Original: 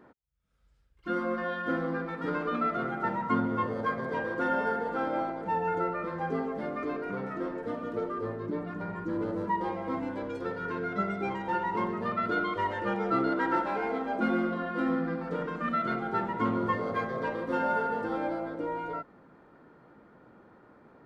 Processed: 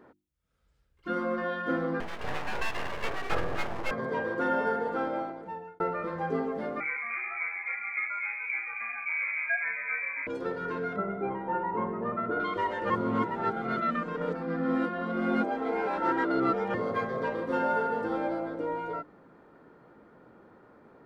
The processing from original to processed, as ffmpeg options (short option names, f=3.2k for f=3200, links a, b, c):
-filter_complex "[0:a]asettb=1/sr,asplit=3[a][b][c];[a]atrim=end=2.004[d];[b]atrim=start=2:end=3.91,asetpts=PTS-STARTPTS,afade=t=in:d=0.004:c=qsin,afade=t=out:st=1.906:d=0.004:c=qsin,aeval=exprs='abs(val(0))':c=same[e];[c]atrim=start=3.906[f];[d][e]acrossfade=d=0.004:c1=hsin:c2=qsin[g];[g][f]acrossfade=d=0.004:c1=qsin:c2=hsin,asettb=1/sr,asplit=3[h][i][j];[h]atrim=end=6.804[k];[i]atrim=start=6.8:end=10.27,asetpts=PTS-STARTPTS,afade=t=in:d=0.004:c=qsin,afade=t=out:st=3.466:d=0.004:c=qsin,lowpass=f=2.2k:t=q:w=0.5098,lowpass=f=2.2k:t=q:w=0.6013,lowpass=f=2.2k:t=q:w=0.9,lowpass=f=2.2k:t=q:w=2.563,afreqshift=-2600[l];[j]atrim=start=10.266[m];[k][l]acrossfade=d=0.004:c1=hsin:c2=qsin[n];[n][m]acrossfade=d=0.004:c1=qsin:c2=hsin,asettb=1/sr,asplit=3[o][p][q];[o]atrim=end=10.964[r];[p]atrim=start=10.96:end=12.4,asetpts=PTS-STARTPTS,afade=t=in:d=0.004:c=qsin,afade=t=out:st=1.436:d=0.004:c=qsin,lowpass=1.4k[s];[q]atrim=start=12.396[t];[r][s]acrossfade=d=0.004:c1=hsin:c2=qsin[u];[u][t]acrossfade=d=0.004:c1=qsin:c2=hsin,asplit=4[v][w][x][y];[v]atrim=end=5.8,asetpts=PTS-STARTPTS,afade=t=out:st=4.94:d=0.86[z];[w]atrim=start=5.8:end=12.902,asetpts=PTS-STARTPTS,afade=t=in:d=0.004:c=hsin[aa];[x]atrim=start=12.898:end=16.742,asetpts=PTS-STARTPTS,areverse[ab];[y]atrim=start=16.738[ac];[z][aa]concat=n=2:v=0:a=1[ad];[ad][ab]acrossfade=d=0.004:c1=hsin:c2=hsin[ae];[ae][ac]acrossfade=d=0.004:c1=hsin:c2=hsin,equalizer=f=420:w=1.5:g=2.5,bandreject=f=50:t=h:w=6,bandreject=f=100:t=h:w=6,bandreject=f=150:t=h:w=6,bandreject=f=200:t=h:w=6,bandreject=f=250:t=h:w=6,bandreject=f=300:t=h:w=6,bandreject=f=350:t=h:w=6"